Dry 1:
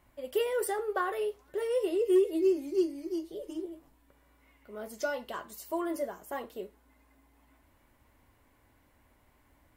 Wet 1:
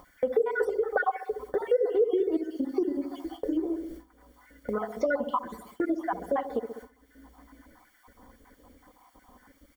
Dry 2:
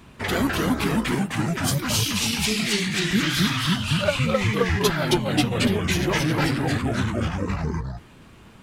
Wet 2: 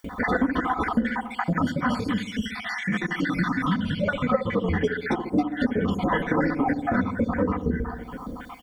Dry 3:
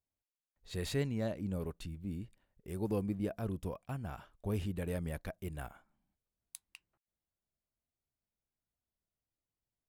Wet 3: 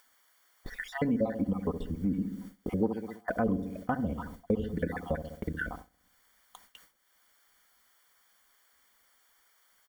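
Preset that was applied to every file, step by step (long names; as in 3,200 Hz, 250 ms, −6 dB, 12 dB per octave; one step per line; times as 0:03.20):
time-frequency cells dropped at random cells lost 57%
comb filter 4 ms, depth 70%
background noise violet −54 dBFS
on a send: delay with a low-pass on its return 66 ms, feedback 54%, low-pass 580 Hz, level −8 dB
on the sum: noise gate with hold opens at −40 dBFS
upward compression, threshold −28 dBFS
low-shelf EQ 170 Hz −7.5 dB
downward compressor 5 to 1, threshold −28 dBFS
Savitzky-Golay smoothing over 41 samples
level +8.5 dB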